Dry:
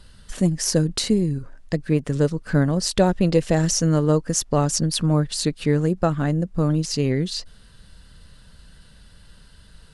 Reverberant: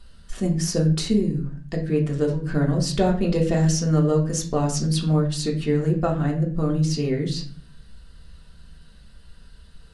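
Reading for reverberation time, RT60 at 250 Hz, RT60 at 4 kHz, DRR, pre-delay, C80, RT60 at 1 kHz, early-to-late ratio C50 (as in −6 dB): 0.45 s, 0.65 s, 0.35 s, −1.5 dB, 3 ms, 13.5 dB, 0.40 s, 9.5 dB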